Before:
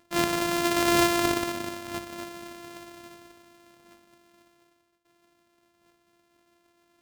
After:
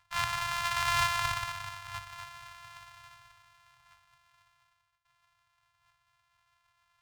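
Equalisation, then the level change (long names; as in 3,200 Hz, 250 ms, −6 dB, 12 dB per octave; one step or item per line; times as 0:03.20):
elliptic band-stop filter 120–930 Hz, stop band 60 dB
low-pass filter 3,400 Hz 6 dB per octave
0.0 dB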